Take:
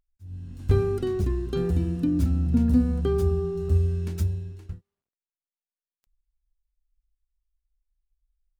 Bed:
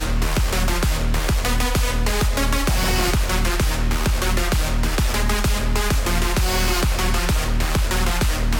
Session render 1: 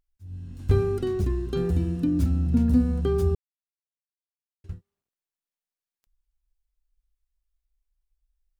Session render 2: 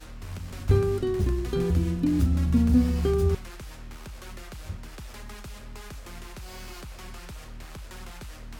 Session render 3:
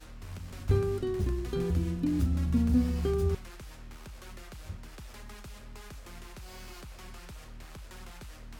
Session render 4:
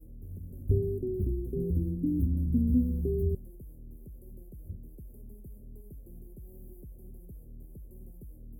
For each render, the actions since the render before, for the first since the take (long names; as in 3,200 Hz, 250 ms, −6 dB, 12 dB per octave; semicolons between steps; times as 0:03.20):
0:03.35–0:04.64: silence
mix in bed −21.5 dB
level −5 dB
inverse Chebyshev band-stop filter 1,400–4,600 Hz, stop band 70 dB